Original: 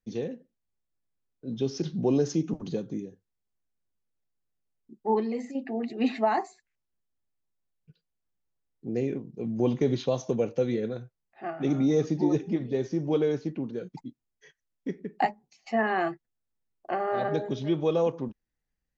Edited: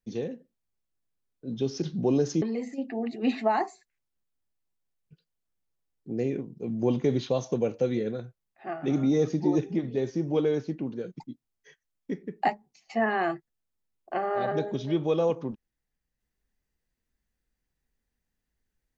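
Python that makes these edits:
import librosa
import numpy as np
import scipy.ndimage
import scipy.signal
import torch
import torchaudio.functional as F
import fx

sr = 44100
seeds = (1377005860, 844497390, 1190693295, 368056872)

y = fx.edit(x, sr, fx.cut(start_s=2.42, length_s=2.77), tone=tone)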